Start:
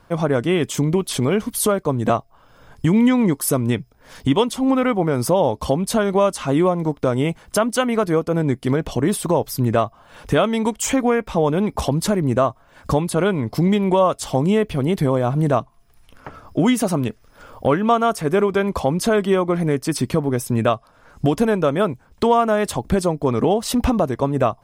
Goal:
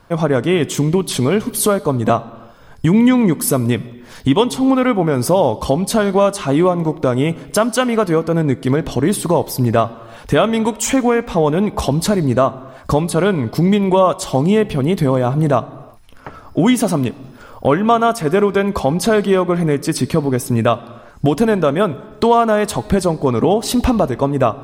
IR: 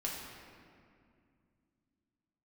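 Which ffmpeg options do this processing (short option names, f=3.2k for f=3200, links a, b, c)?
-filter_complex "[0:a]asplit=2[a][b];[b]equalizer=f=4.1k:t=o:w=0.32:g=11[c];[1:a]atrim=start_sample=2205,afade=t=out:st=0.43:d=0.01,atrim=end_sample=19404[d];[c][d]afir=irnorm=-1:irlink=0,volume=-16.5dB[e];[a][e]amix=inputs=2:normalize=0,volume=2.5dB"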